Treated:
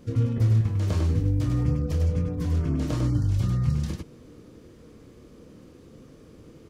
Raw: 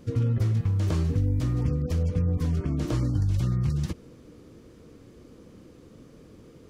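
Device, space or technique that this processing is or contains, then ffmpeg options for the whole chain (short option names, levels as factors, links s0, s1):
slapback doubling: -filter_complex "[0:a]asplit=3[s0][s1][s2];[s1]adelay=27,volume=0.447[s3];[s2]adelay=99,volume=0.631[s4];[s0][s3][s4]amix=inputs=3:normalize=0,volume=0.891"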